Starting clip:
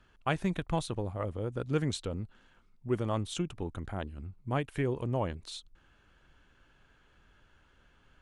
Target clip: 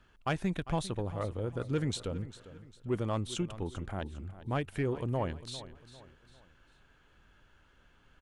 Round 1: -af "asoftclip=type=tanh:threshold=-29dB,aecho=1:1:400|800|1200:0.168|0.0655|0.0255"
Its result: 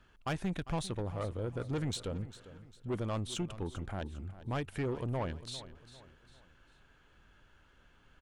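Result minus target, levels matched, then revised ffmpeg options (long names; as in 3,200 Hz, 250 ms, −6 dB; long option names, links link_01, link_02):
soft clipping: distortion +9 dB
-af "asoftclip=type=tanh:threshold=-21dB,aecho=1:1:400|800|1200:0.168|0.0655|0.0255"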